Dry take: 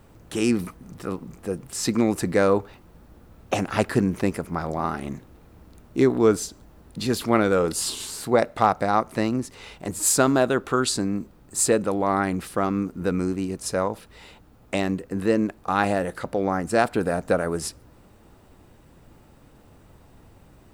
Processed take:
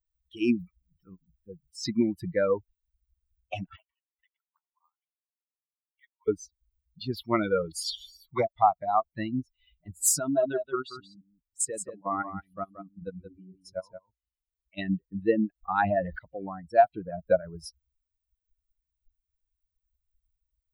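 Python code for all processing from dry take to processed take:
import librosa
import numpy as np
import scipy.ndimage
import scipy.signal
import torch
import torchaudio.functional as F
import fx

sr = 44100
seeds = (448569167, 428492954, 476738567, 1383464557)

y = fx.chain(x, sr, fx.highpass(hz=970.0, slope=24),
    fx.env_flanger(rest_ms=3.6, full_db=-29.5),
    fx.resample_linear(factor=8), at=(3.76, 6.28))
y = fx.chain(y, sr, fx.peak_eq(hz=8600.0, db=-3.5, octaves=0.33),
    fx.comb(ms=0.9, depth=0.34),
    fx.dispersion(late='lows', ms=64.0, hz=1200.0), at=(7.83, 8.47))
y = fx.chain(y, sr, fx.level_steps(step_db=11),
    fx.echo_single(ms=177, db=-3.5), at=(10.19, 14.78))
y = fx.chain(y, sr, fx.high_shelf(hz=9600.0, db=-9.5),
    fx.env_flatten(amount_pct=50), at=(15.63, 16.19))
y = fx.bin_expand(y, sr, power=3.0)
y = fx.peak_eq(y, sr, hz=700.0, db=12.0, octaves=0.38)
y = fx.rider(y, sr, range_db=4, speed_s=0.5)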